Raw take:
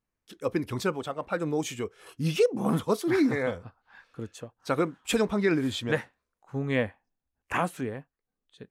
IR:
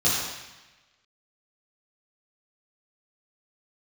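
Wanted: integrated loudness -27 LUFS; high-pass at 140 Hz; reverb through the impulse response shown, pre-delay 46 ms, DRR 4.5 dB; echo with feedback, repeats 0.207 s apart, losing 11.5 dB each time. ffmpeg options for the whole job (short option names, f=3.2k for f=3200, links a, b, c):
-filter_complex "[0:a]highpass=140,aecho=1:1:207|414|621:0.266|0.0718|0.0194,asplit=2[a][b];[1:a]atrim=start_sample=2205,adelay=46[c];[b][c]afir=irnorm=-1:irlink=0,volume=-19dB[d];[a][d]amix=inputs=2:normalize=0,volume=0.5dB"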